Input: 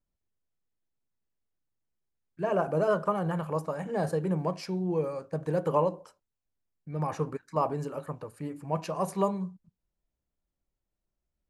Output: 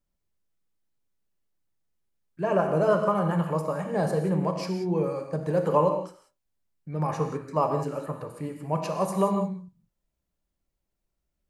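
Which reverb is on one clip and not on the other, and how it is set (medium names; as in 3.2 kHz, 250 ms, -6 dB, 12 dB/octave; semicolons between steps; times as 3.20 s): gated-style reverb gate 210 ms flat, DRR 4.5 dB; trim +2.5 dB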